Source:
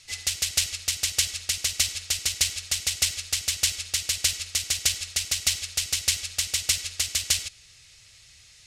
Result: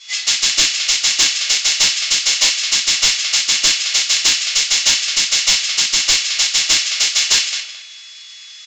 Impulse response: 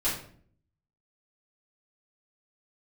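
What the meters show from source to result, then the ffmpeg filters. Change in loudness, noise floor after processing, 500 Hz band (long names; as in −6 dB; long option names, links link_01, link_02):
+11.5 dB, −37 dBFS, +11.5 dB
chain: -filter_complex "[0:a]highpass=1100,asplit=2[link_01][link_02];[link_02]adelay=217,lowpass=frequency=3300:poles=1,volume=-7dB,asplit=2[link_03][link_04];[link_04]adelay=217,lowpass=frequency=3300:poles=1,volume=0.26,asplit=2[link_05][link_06];[link_06]adelay=217,lowpass=frequency=3300:poles=1,volume=0.26[link_07];[link_01][link_03][link_05][link_07]amix=inputs=4:normalize=0,aeval=exprs='val(0)+0.00251*sin(2*PI*3400*n/s)':channel_layout=same,aresample=16000,asoftclip=type=hard:threshold=-17.5dB,aresample=44100[link_08];[1:a]atrim=start_sample=2205,atrim=end_sample=3528[link_09];[link_08][link_09]afir=irnorm=-1:irlink=0,asplit=2[link_10][link_11];[link_11]acontrast=88,volume=-2dB[link_12];[link_10][link_12]amix=inputs=2:normalize=0,volume=-2.5dB"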